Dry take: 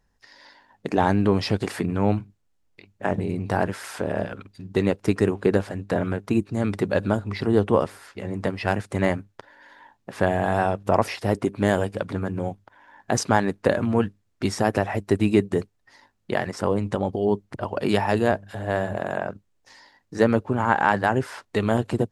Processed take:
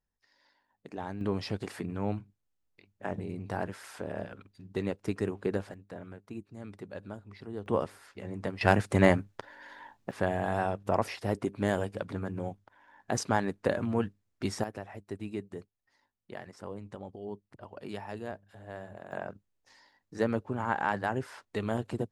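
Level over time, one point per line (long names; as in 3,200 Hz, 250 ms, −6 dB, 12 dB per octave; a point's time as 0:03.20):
−18.5 dB
from 0:01.21 −11 dB
from 0:05.74 −20 dB
from 0:07.66 −9 dB
from 0:08.61 +0.5 dB
from 0:10.11 −8 dB
from 0:14.64 −18.5 dB
from 0:19.12 −10 dB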